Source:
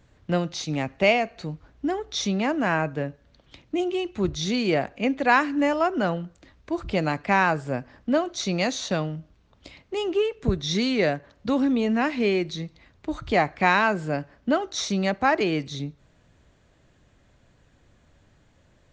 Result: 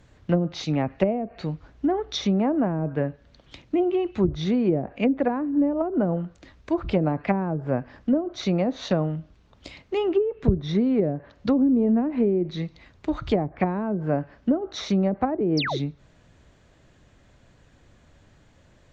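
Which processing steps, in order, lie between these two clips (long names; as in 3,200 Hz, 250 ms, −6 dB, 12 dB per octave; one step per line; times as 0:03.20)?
treble cut that deepens with the level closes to 370 Hz, closed at −18.5 dBFS
sound drawn into the spectrogram fall, 0:15.57–0:15.78, 290–6,100 Hz −31 dBFS
level +3.5 dB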